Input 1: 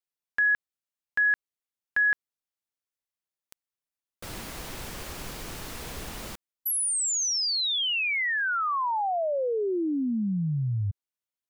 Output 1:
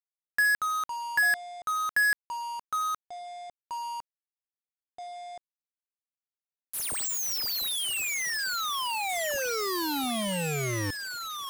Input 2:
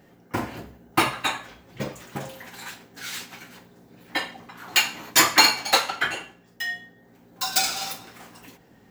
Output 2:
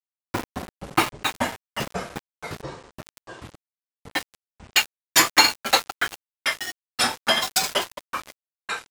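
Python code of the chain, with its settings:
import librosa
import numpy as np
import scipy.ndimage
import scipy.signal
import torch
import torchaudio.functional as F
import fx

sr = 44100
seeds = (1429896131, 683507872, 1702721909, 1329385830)

y = fx.env_lowpass(x, sr, base_hz=1800.0, full_db=-24.0)
y = fx.transient(y, sr, attack_db=2, sustain_db=-4)
y = np.where(np.abs(y) >= 10.0 ** (-25.0 / 20.0), y, 0.0)
y = fx.echo_pitch(y, sr, ms=104, semitones=-5, count=3, db_per_echo=-6.0)
y = F.gain(torch.from_numpy(y), -1.0).numpy()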